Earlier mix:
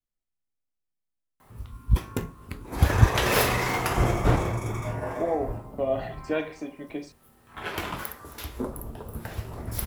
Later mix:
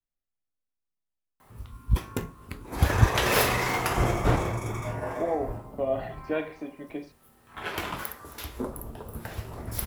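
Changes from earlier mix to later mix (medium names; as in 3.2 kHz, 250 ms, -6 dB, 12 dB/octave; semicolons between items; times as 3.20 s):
speech: add distance through air 200 m; master: add bass shelf 330 Hz -2.5 dB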